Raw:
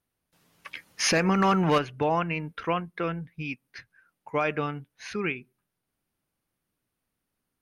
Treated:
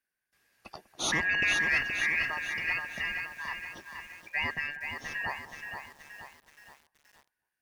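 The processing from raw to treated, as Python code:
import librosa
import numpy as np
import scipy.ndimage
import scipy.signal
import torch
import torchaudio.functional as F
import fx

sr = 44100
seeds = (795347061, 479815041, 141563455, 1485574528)

y = fx.band_shuffle(x, sr, order='2143')
y = fx.echo_wet_lowpass(y, sr, ms=196, feedback_pct=65, hz=1200.0, wet_db=-15.5)
y = fx.echo_crushed(y, sr, ms=474, feedback_pct=55, bits=8, wet_db=-6)
y = y * librosa.db_to_amplitude(-5.5)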